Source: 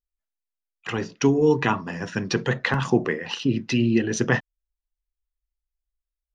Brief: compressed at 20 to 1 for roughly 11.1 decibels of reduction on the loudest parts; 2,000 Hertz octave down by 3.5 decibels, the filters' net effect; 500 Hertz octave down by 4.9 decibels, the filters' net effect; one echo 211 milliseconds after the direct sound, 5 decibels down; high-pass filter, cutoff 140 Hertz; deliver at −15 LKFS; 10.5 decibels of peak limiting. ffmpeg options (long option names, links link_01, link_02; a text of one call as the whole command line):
ffmpeg -i in.wav -af "highpass=140,equalizer=frequency=500:width_type=o:gain=-6,equalizer=frequency=2000:width_type=o:gain=-4,acompressor=threshold=-27dB:ratio=20,alimiter=limit=-23dB:level=0:latency=1,aecho=1:1:211:0.562,volume=19dB" out.wav